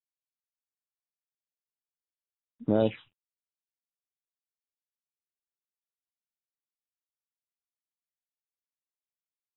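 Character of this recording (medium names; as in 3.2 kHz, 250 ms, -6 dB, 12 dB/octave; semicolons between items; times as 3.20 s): a buzz of ramps at a fixed pitch in blocks of 8 samples; phasing stages 6, 1.2 Hz, lowest notch 440–2800 Hz; a quantiser's noise floor 12-bit, dither none; AAC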